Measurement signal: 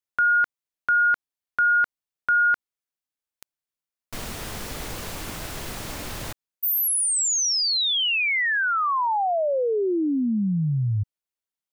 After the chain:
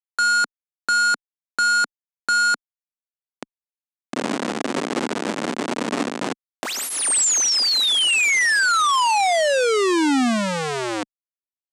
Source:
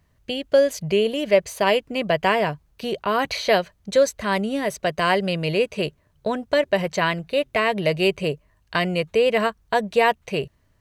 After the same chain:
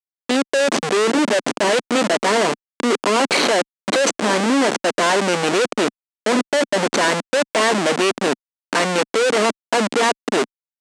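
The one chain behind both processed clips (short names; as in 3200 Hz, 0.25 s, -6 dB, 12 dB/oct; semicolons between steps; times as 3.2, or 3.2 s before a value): Schmitt trigger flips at -28 dBFS; elliptic band-pass 240–8600 Hz, stop band 50 dB; gain +7.5 dB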